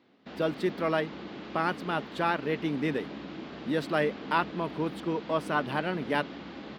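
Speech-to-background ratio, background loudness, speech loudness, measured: 10.5 dB, -41.5 LUFS, -31.0 LUFS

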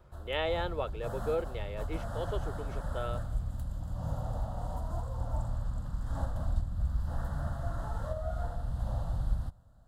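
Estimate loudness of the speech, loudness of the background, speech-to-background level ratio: -37.0 LUFS, -37.5 LUFS, 0.5 dB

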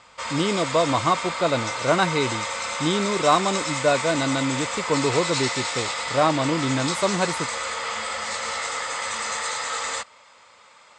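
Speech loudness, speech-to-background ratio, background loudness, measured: -24.0 LUFS, 3.0 dB, -27.0 LUFS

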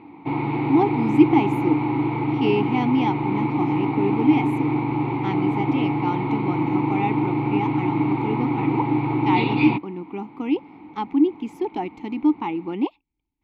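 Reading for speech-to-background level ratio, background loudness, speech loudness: -2.0 dB, -23.0 LUFS, -25.0 LUFS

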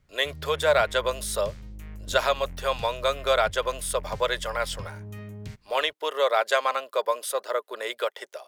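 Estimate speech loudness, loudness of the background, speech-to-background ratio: -26.5 LUFS, -42.0 LUFS, 15.5 dB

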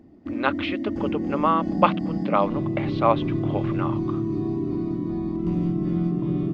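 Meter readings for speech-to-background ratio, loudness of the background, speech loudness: 0.5 dB, -26.5 LUFS, -26.0 LUFS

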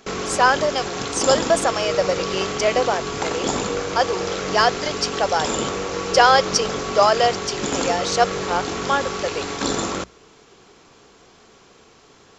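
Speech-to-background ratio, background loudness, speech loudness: 4.5 dB, -25.5 LUFS, -21.0 LUFS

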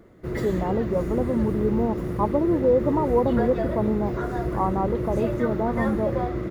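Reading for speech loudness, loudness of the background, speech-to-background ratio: -25.5 LUFS, -28.5 LUFS, 3.0 dB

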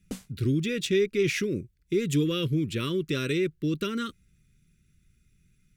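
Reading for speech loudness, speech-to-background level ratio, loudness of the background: -28.0 LUFS, 14.0 dB, -42.0 LUFS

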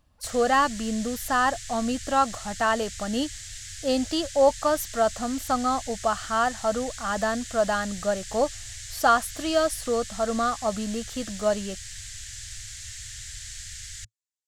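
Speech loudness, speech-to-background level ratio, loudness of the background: -26.0 LUFS, 11.5 dB, -37.5 LUFS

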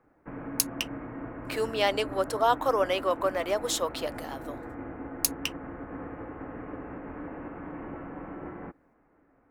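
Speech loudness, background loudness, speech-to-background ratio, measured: -29.0 LUFS, -40.0 LUFS, 11.0 dB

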